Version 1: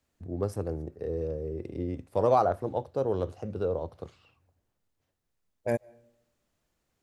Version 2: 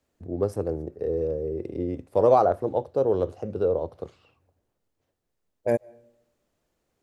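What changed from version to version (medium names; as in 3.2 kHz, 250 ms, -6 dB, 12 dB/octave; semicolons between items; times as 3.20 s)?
master: add peaking EQ 450 Hz +6.5 dB 1.7 oct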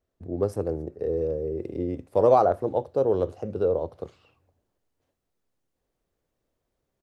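second voice: entry +1.60 s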